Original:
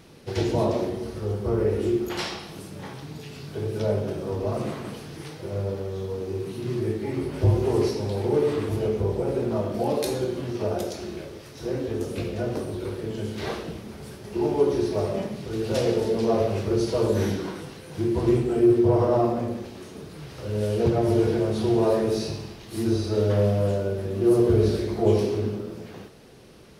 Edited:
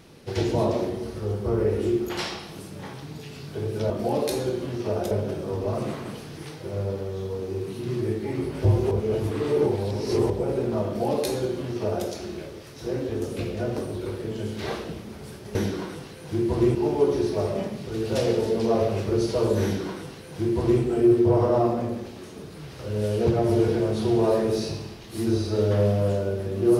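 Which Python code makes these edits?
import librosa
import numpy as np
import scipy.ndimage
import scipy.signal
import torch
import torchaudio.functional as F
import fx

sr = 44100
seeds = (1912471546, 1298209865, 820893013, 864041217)

y = fx.edit(x, sr, fx.reverse_span(start_s=7.7, length_s=1.39),
    fx.duplicate(start_s=9.65, length_s=1.21, to_s=3.9),
    fx.duplicate(start_s=17.21, length_s=1.2, to_s=14.34), tone=tone)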